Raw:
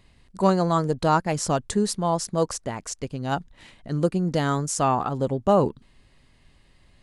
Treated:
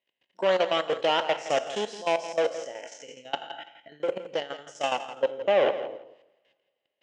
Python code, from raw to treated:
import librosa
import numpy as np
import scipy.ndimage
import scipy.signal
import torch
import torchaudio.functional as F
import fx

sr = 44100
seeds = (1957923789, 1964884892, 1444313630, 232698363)

y = fx.spec_trails(x, sr, decay_s=0.91)
y = fx.noise_reduce_blind(y, sr, reduce_db=14)
y = fx.level_steps(y, sr, step_db=22)
y = 10.0 ** (-25.5 / 20.0) * np.tanh(y / 10.0 ** (-25.5 / 20.0))
y = fx.tremolo_shape(y, sr, shape='saw_down', hz=12.0, depth_pct=70, at=(2.7, 5.2), fade=0.02)
y = fx.cabinet(y, sr, low_hz=470.0, low_slope=12, high_hz=5700.0, hz=(560.0, 1200.0, 1900.0, 3000.0, 4400.0), db=(8, -9, 3, 10, -9))
y = fx.echo_feedback(y, sr, ms=166, feedback_pct=18, wet_db=-13)
y = fx.rev_double_slope(y, sr, seeds[0], early_s=0.51, late_s=2.1, knee_db=-22, drr_db=14.5)
y = y * librosa.db_to_amplitude(6.5)